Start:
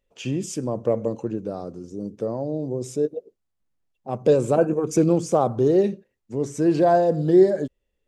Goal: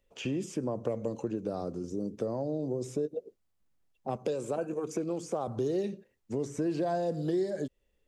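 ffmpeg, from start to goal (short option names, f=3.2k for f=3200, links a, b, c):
-filter_complex "[0:a]acrossover=split=240|2500[a][b][c];[a]acompressor=threshold=-39dB:ratio=4[d];[b]acompressor=threshold=-30dB:ratio=4[e];[c]acompressor=threshold=-50dB:ratio=4[f];[d][e][f]amix=inputs=3:normalize=0,asettb=1/sr,asplit=3[g][h][i];[g]atrim=end=4.164[j];[h]atrim=start=4.16:end=5.48,asetpts=PTS-STARTPTS,afade=t=in:d=0.004:c=qsin,afade=t=out:st=1.316:d=0.004:c=qsin,lowshelf=f=180:g=-11[k];[i]atrim=start=5.476[l];[j][k]acrossfade=d=0.004:c1=hsin:c2=qsin[m];[m][l]acrossfade=d=0.004:c1=qsin:c2=hsin,asplit=2[n][o];[o]acompressor=threshold=-35dB:ratio=6,volume=-0.5dB[p];[n][p]amix=inputs=2:normalize=0,volume=-4dB"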